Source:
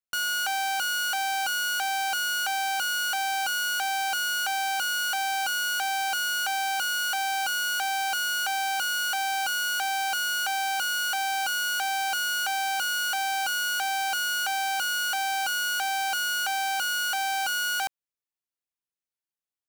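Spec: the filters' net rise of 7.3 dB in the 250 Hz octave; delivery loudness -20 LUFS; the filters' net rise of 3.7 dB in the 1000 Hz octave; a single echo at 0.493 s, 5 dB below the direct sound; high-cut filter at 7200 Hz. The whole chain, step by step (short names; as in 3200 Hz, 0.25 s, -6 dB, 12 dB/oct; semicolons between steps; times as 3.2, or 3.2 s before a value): LPF 7200 Hz; bell 250 Hz +8.5 dB; bell 1000 Hz +5 dB; echo 0.493 s -5 dB; gain +3.5 dB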